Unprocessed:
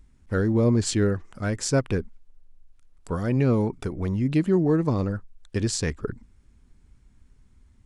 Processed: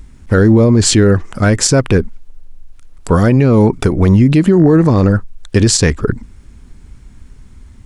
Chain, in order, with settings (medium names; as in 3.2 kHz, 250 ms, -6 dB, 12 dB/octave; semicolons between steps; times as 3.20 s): 4.54–5.06 s: mains buzz 50 Hz, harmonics 39, -49 dBFS -3 dB/octave; loudness maximiser +19 dB; trim -1 dB